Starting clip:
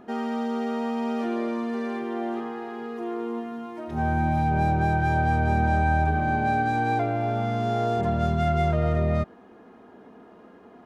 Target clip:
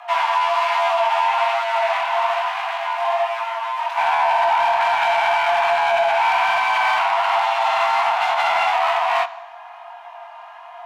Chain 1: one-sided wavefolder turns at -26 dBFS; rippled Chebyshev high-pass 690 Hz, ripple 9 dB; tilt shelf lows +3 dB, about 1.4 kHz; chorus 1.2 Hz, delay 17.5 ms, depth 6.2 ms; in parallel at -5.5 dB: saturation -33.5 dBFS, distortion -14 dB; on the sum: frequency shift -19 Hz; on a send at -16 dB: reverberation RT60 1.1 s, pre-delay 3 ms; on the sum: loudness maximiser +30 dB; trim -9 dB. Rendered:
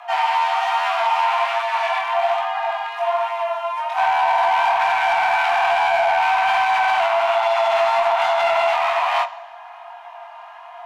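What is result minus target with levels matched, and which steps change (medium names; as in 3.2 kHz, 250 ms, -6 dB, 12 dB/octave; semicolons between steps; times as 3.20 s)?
one-sided wavefolder: distortion -13 dB
change: one-sided wavefolder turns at -37.5 dBFS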